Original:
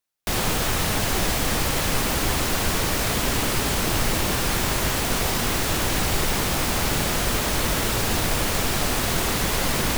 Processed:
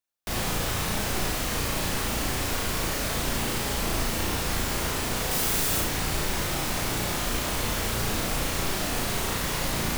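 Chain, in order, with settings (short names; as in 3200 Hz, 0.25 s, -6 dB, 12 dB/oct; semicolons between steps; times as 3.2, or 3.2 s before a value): 5.31–5.81 high shelf 6500 Hz +9.5 dB; flutter echo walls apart 6 m, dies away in 0.51 s; gain -7 dB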